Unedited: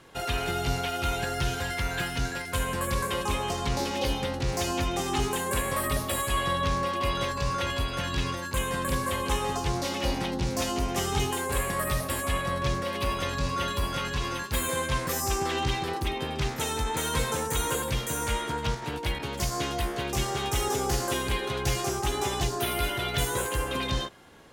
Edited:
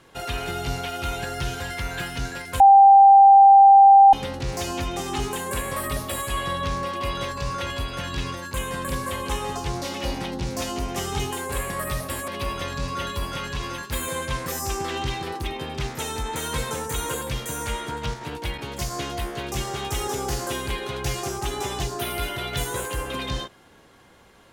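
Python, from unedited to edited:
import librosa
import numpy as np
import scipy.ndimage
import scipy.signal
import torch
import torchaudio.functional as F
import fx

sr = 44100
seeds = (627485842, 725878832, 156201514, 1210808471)

y = fx.edit(x, sr, fx.bleep(start_s=2.6, length_s=1.53, hz=789.0, db=-7.5),
    fx.cut(start_s=12.28, length_s=0.61), tone=tone)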